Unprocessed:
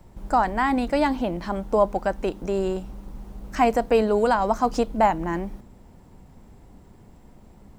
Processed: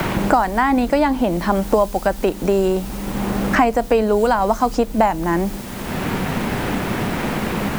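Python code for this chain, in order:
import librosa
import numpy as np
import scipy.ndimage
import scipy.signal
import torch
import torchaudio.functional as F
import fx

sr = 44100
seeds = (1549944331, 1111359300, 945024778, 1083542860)

p1 = fx.quant_dither(x, sr, seeds[0], bits=6, dither='triangular')
p2 = x + (p1 * librosa.db_to_amplitude(-10.0))
p3 = fx.band_squash(p2, sr, depth_pct=100)
y = p3 * librosa.db_to_amplitude(2.5)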